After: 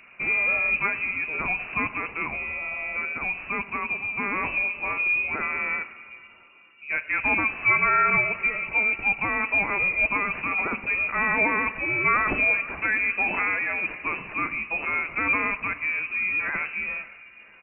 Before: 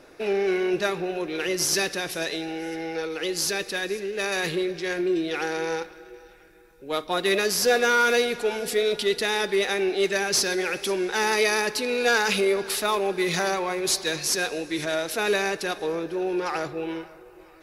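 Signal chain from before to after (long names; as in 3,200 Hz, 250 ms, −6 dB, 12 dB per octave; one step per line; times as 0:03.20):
on a send: echo with shifted repeats 107 ms, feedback 57%, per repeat +40 Hz, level −20.5 dB
on the sum: voice inversion scrambler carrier 2,800 Hz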